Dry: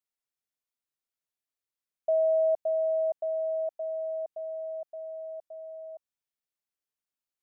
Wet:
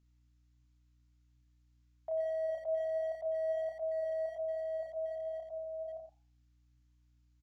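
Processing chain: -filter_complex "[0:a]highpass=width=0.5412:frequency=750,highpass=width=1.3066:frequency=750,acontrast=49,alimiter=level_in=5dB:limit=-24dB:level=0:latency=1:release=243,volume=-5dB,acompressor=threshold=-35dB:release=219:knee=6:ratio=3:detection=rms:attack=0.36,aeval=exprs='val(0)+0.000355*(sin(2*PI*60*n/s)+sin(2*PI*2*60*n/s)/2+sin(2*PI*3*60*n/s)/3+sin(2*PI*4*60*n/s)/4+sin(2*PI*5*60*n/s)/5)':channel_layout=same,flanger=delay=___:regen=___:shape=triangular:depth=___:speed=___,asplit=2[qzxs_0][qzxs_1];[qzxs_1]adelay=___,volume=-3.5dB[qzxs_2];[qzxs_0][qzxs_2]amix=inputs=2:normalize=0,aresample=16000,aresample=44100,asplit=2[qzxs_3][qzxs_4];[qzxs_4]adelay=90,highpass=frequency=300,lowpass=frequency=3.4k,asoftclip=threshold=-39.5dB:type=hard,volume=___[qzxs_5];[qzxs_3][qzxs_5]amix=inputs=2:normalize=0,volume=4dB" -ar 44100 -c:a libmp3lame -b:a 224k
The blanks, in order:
6.9, 90, 2.6, 1.3, 31, -9dB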